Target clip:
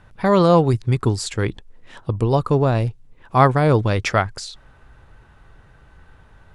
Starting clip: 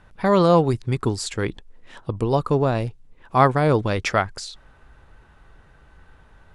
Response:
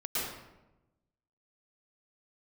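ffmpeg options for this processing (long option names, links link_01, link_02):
-af "equalizer=frequency=110:width_type=o:width=0.72:gain=5,volume=1.5dB"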